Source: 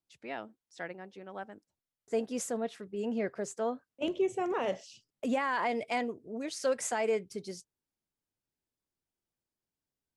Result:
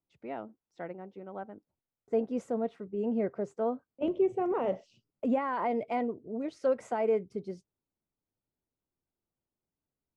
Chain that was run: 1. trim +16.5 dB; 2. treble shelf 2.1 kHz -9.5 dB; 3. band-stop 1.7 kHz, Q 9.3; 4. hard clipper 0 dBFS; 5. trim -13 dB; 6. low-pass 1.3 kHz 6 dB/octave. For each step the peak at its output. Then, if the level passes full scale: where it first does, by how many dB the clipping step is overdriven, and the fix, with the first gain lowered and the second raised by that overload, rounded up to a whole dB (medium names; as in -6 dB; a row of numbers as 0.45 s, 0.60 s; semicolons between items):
-4.5 dBFS, -5.5 dBFS, -5.5 dBFS, -5.5 dBFS, -18.5 dBFS, -19.0 dBFS; nothing clips